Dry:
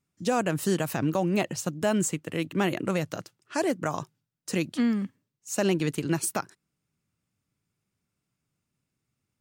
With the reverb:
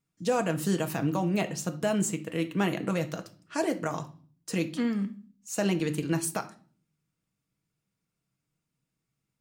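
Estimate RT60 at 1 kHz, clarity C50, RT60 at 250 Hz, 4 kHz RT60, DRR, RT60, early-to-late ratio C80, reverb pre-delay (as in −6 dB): 0.40 s, 15.0 dB, 0.75 s, 0.40 s, 6.5 dB, 0.40 s, 21.0 dB, 4 ms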